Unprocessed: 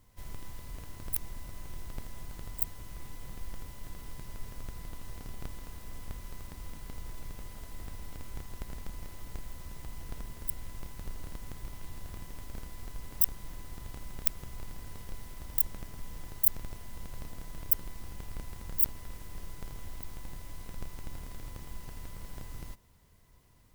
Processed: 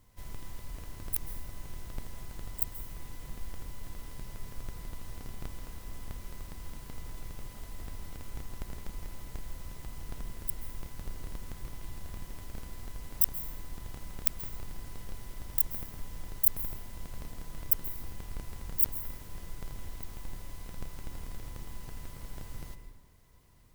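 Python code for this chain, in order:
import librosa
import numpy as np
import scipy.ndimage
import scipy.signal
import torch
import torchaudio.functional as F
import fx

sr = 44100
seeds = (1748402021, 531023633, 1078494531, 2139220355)

y = fx.rev_plate(x, sr, seeds[0], rt60_s=1.1, hf_ratio=0.55, predelay_ms=120, drr_db=9.5)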